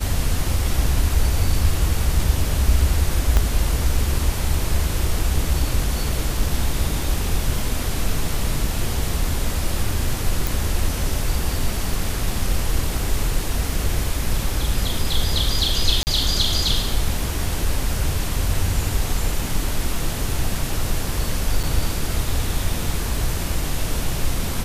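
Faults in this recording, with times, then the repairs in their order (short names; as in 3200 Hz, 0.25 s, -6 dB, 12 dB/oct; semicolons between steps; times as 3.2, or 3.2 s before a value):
3.37 pop -5 dBFS
10.47 pop
16.03–16.07 gap 39 ms
21.63–21.64 gap 6.3 ms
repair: de-click; interpolate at 16.03, 39 ms; interpolate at 21.63, 6.3 ms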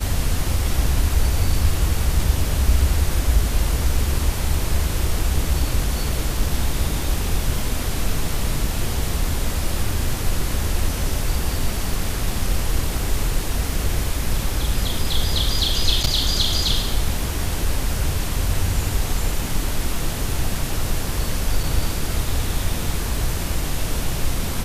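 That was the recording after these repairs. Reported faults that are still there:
3.37 pop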